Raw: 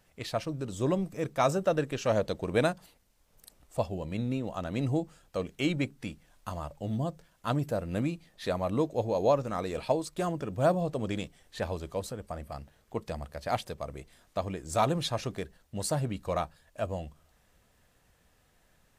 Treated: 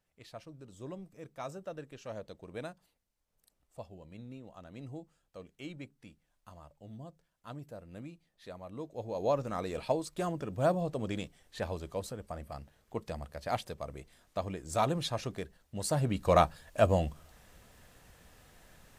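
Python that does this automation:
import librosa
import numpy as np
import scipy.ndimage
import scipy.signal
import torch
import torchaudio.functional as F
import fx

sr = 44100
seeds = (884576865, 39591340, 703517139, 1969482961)

y = fx.gain(x, sr, db=fx.line((8.72, -15.5), (9.41, -3.0), (15.81, -3.0), (16.41, 8.0)))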